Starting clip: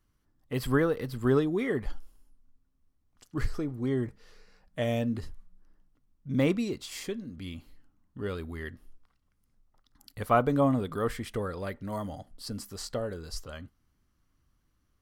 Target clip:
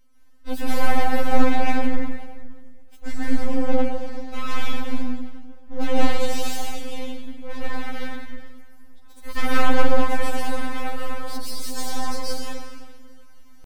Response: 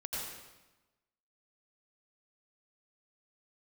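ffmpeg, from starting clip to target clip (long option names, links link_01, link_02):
-filter_complex "[0:a]atempo=1.1,asplit=2[link_01][link_02];[link_02]acompressor=threshold=-41dB:ratio=6,volume=-2dB[link_03];[link_01][link_03]amix=inputs=2:normalize=0,aresample=32000,aresample=44100,aeval=exprs='clip(val(0),-1,0.112)':channel_layout=same,areverse,acompressor=mode=upward:threshold=-48dB:ratio=2.5,areverse[link_04];[1:a]atrim=start_sample=2205,asetrate=29988,aresample=44100[link_05];[link_04][link_05]afir=irnorm=-1:irlink=0,aeval=exprs='abs(val(0))':channel_layout=same,afftfilt=real='re*3.46*eq(mod(b,12),0)':imag='im*3.46*eq(mod(b,12),0)':win_size=2048:overlap=0.75,volume=5dB"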